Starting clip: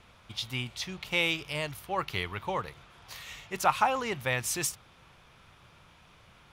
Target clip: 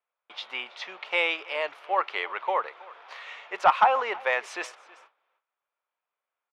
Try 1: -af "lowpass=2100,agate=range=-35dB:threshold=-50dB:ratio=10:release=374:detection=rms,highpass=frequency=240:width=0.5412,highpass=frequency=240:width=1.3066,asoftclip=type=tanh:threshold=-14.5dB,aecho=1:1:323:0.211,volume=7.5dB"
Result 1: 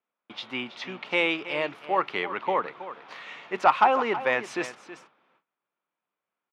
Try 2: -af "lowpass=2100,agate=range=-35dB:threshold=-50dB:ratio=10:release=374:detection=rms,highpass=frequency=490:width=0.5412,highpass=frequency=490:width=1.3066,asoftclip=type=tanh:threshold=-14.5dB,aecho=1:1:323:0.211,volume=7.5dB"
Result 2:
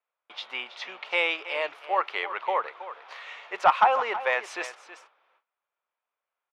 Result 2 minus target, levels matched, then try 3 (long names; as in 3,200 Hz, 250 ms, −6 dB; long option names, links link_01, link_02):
echo-to-direct +8 dB
-af "lowpass=2100,agate=range=-35dB:threshold=-50dB:ratio=10:release=374:detection=rms,highpass=frequency=490:width=0.5412,highpass=frequency=490:width=1.3066,asoftclip=type=tanh:threshold=-14.5dB,aecho=1:1:323:0.0841,volume=7.5dB"